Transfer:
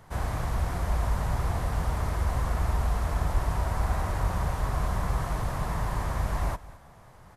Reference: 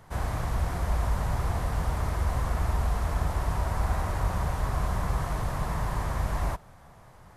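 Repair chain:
high-pass at the plosives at 0:03.33
echo removal 214 ms −19 dB

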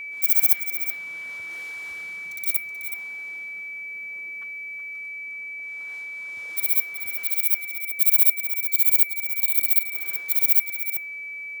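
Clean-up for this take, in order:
notch filter 2,300 Hz, Q 30
echo removal 374 ms −10 dB

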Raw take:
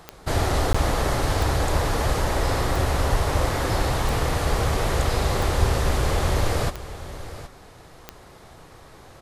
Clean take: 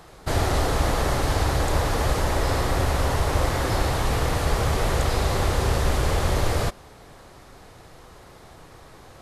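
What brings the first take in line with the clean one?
click removal
0:00.69–0:00.81: high-pass filter 140 Hz 24 dB per octave
0:03.11–0:03.23: high-pass filter 140 Hz 24 dB per octave
0:05.59–0:05.71: high-pass filter 140 Hz 24 dB per octave
repair the gap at 0:00.73, 15 ms
echo removal 769 ms −14 dB

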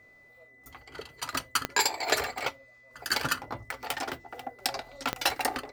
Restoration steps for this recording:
click removal
notch filter 2,000 Hz, Q 30

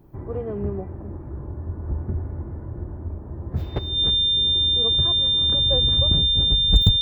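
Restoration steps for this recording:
clipped peaks rebuilt −5.5 dBFS
notch filter 3,600 Hz, Q 30

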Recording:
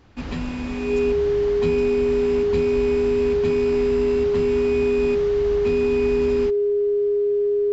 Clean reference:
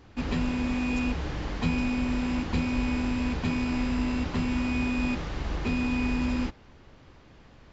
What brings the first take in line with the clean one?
notch filter 410 Hz, Q 30

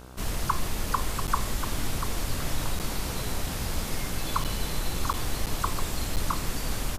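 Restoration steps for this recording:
hum removal 63.2 Hz, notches 25
repair the gap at 0:01.27/0:02.79/0:04.44/0:05.13/0:05.46/0:06.16, 8.3 ms
echo removal 690 ms −9.5 dB

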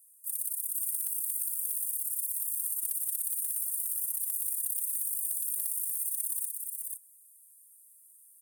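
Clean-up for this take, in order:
clipped peaks rebuilt −22 dBFS
echo removal 487 ms −3.5 dB

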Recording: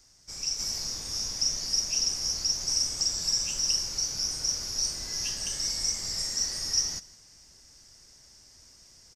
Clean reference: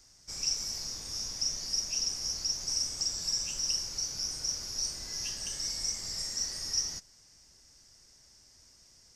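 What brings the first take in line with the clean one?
echo removal 160 ms −20.5 dB
level 0 dB, from 0:00.59 −4.5 dB

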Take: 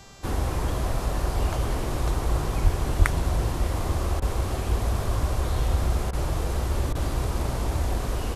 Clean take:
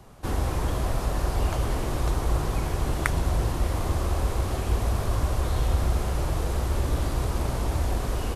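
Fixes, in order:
hum removal 393.5 Hz, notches 20
high-pass at the plosives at 0:02.63/0:02.98
repair the gap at 0:04.20/0:06.11/0:06.93, 19 ms

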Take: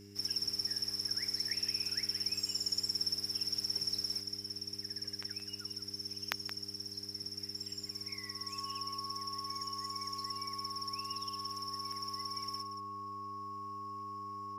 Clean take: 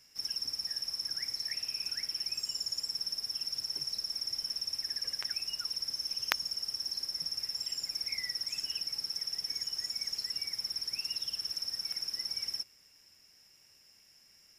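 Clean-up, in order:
hum removal 100.7 Hz, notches 4
notch filter 1,100 Hz, Q 30
echo removal 174 ms −11 dB
level correction +7 dB, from 0:04.21

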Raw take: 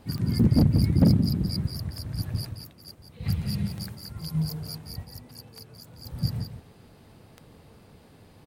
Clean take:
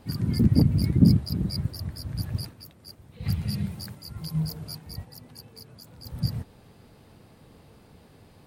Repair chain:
clipped peaks rebuilt −12.5 dBFS
click removal
echo removal 174 ms −8.5 dB

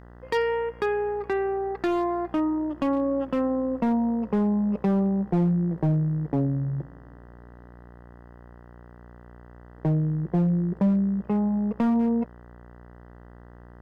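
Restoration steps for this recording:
clipped peaks rebuilt −17.5 dBFS
hum removal 59.7 Hz, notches 33

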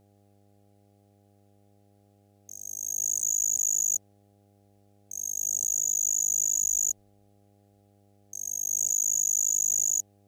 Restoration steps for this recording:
clipped peaks rebuilt −18 dBFS
hum removal 100.9 Hz, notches 8

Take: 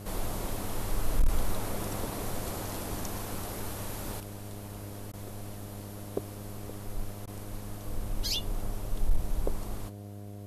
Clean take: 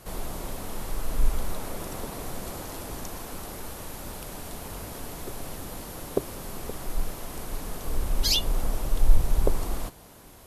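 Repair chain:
clipped peaks rebuilt −17 dBFS
hum removal 101.9 Hz, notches 7
repair the gap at 0:05.12/0:07.26, 13 ms
level 0 dB, from 0:04.20 +8 dB

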